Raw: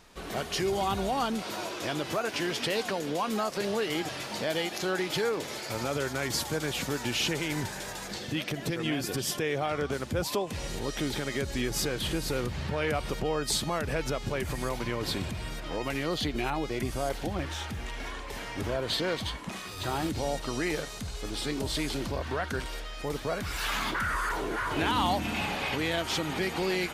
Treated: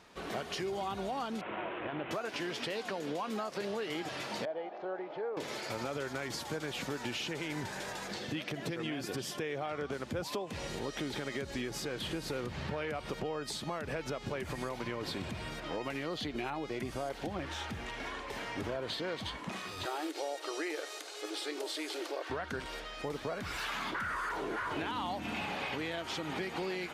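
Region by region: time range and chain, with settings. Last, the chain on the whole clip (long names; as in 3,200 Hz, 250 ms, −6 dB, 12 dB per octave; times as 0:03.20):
0:01.41–0:02.11: variable-slope delta modulation 16 kbit/s + saturating transformer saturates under 470 Hz
0:04.45–0:05.37: resonant band-pass 650 Hz, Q 1.9 + high-frequency loss of the air 150 metres
0:19.85–0:22.30: linear-phase brick-wall high-pass 290 Hz + high-shelf EQ 6,300 Hz +5 dB + notch filter 1,000 Hz, Q 11
whole clip: high-pass filter 160 Hz 6 dB per octave; downward compressor, threshold −33 dBFS; low-pass filter 3,900 Hz 6 dB per octave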